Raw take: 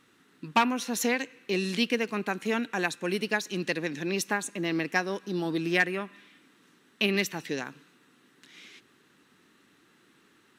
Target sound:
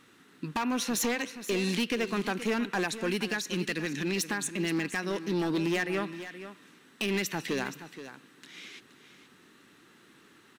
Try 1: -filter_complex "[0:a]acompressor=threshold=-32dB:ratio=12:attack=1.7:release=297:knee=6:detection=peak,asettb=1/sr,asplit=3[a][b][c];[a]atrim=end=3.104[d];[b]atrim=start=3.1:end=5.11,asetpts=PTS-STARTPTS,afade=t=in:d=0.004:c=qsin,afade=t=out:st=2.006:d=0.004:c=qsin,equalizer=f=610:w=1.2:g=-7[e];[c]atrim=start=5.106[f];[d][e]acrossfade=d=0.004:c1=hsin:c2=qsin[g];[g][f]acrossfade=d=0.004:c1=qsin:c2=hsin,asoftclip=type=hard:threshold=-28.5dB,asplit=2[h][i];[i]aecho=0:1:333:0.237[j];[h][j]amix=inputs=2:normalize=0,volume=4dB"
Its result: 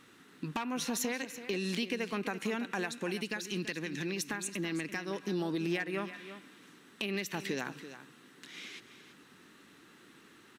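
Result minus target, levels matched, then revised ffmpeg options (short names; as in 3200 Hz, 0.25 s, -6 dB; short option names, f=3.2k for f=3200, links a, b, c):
compressor: peak gain reduction +8 dB; echo 0.14 s early
-filter_complex "[0:a]acompressor=threshold=-23.5dB:ratio=12:attack=1.7:release=297:knee=6:detection=peak,asettb=1/sr,asplit=3[a][b][c];[a]atrim=end=3.104[d];[b]atrim=start=3.1:end=5.11,asetpts=PTS-STARTPTS,afade=t=in:d=0.004:c=qsin,afade=t=out:st=2.006:d=0.004:c=qsin,equalizer=f=610:w=1.2:g=-7[e];[c]atrim=start=5.106[f];[d][e]acrossfade=d=0.004:c1=hsin:c2=qsin[g];[g][f]acrossfade=d=0.004:c1=qsin:c2=hsin,asoftclip=type=hard:threshold=-28.5dB,asplit=2[h][i];[i]aecho=0:1:473:0.237[j];[h][j]amix=inputs=2:normalize=0,volume=4dB"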